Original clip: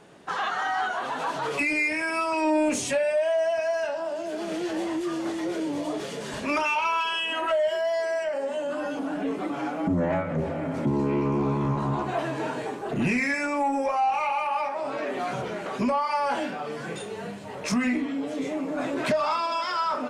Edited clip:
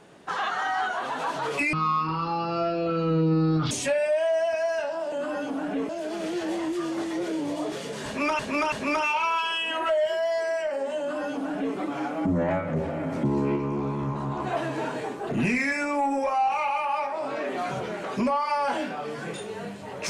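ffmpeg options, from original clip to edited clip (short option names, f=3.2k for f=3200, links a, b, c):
-filter_complex "[0:a]asplit=9[a][b][c][d][e][f][g][h][i];[a]atrim=end=1.734[j];[b]atrim=start=1.73:end=2.76,asetpts=PTS-STARTPTS,asetrate=22932,aresample=44100[k];[c]atrim=start=2.756:end=4.172[l];[d]atrim=start=8.608:end=9.382[m];[e]atrim=start=4.168:end=6.672[n];[f]atrim=start=6.338:end=6.672[o];[g]atrim=start=6.338:end=11.182[p];[h]atrim=start=11.178:end=12.022,asetpts=PTS-STARTPTS,volume=-3.5dB[q];[i]atrim=start=12.018[r];[j][k]acrossfade=d=0.004:c1=hsin:c2=hsin[s];[s][l]acrossfade=d=0.004:c1=hsin:c2=hsin[t];[t][m]acrossfade=d=0.004:c1=hsin:c2=hsin[u];[u][n]acrossfade=d=0.004:c1=hsin:c2=hsin[v];[v][o]acrossfade=d=0.004:c1=hsin:c2=hsin[w];[w][p]acrossfade=d=0.004:c1=hsin:c2=hsin[x];[x][q]acrossfade=d=0.004:c1=hsin:c2=hsin[y];[y][r]acrossfade=d=0.004:c1=hsin:c2=hsin"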